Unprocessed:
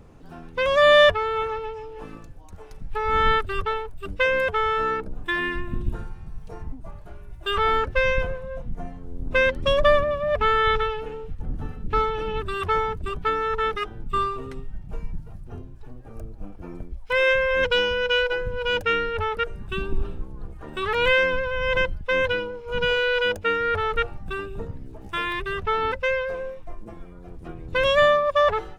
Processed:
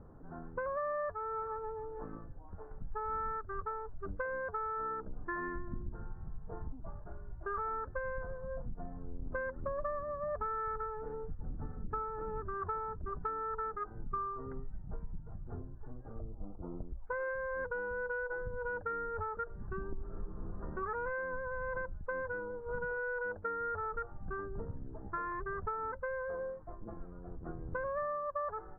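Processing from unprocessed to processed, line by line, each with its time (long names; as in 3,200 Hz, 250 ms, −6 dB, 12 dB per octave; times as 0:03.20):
0:16.19–0:16.89: Savitzky-Golay smoothing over 65 samples
0:20.04–0:20.58: thrown reverb, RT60 1.9 s, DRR −4 dB
0:26.28–0:26.82: high-pass filter 50 Hz 6 dB per octave
whole clip: Butterworth low-pass 1,600 Hz 48 dB per octave; dynamic equaliser 1,200 Hz, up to +5 dB, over −35 dBFS, Q 1.5; downward compressor 6 to 1, threshold −30 dBFS; level −5.5 dB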